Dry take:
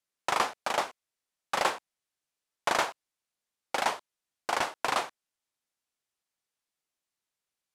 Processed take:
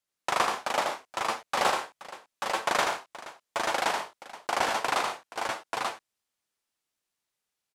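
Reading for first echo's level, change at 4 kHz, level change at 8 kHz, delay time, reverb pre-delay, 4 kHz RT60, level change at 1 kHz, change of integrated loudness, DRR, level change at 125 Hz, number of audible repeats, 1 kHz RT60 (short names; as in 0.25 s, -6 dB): -4.0 dB, +3.5 dB, +3.0 dB, 81 ms, none, none, +3.0 dB, +1.5 dB, none, +3.5 dB, 4, none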